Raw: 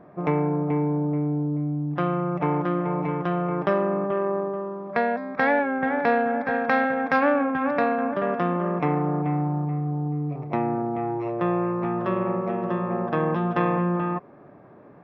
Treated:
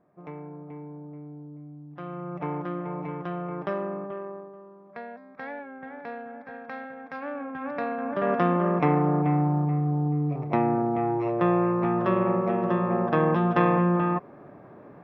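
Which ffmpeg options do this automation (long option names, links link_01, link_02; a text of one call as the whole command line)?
ffmpeg -i in.wav -af "volume=10.5dB,afade=type=in:start_time=1.91:duration=0.51:silence=0.334965,afade=type=out:start_time=3.85:duration=0.65:silence=0.354813,afade=type=in:start_time=7.17:duration=0.88:silence=0.298538,afade=type=in:start_time=8.05:duration=0.29:silence=0.421697" out.wav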